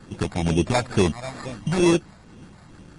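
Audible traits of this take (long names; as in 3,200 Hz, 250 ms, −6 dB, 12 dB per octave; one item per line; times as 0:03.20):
phaser sweep stages 8, 2.2 Hz, lowest notch 360–1,200 Hz
aliases and images of a low sample rate 3,000 Hz, jitter 0%
MP3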